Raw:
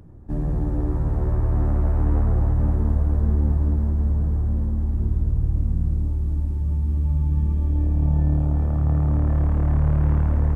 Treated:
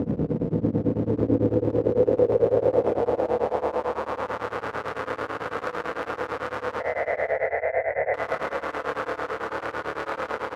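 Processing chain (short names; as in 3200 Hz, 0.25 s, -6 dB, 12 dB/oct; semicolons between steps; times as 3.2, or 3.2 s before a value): infinite clipping; HPF 59 Hz; band-pass sweep 220 Hz -> 1300 Hz, 0.74–4.46; 6.8–8.14 EQ curve 150 Hz 0 dB, 220 Hz -27 dB, 660 Hz +15 dB, 1200 Hz -24 dB, 2000 Hz +14 dB, 3000 Hz -27 dB; limiter -25.5 dBFS, peak gain reduction 7 dB; bell 490 Hz +14 dB 0.41 oct; echo 0.515 s -9.5 dB; FDN reverb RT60 2.4 s, low-frequency decay 1×, high-frequency decay 0.95×, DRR 4 dB; beating tremolo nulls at 9 Hz; gain +7 dB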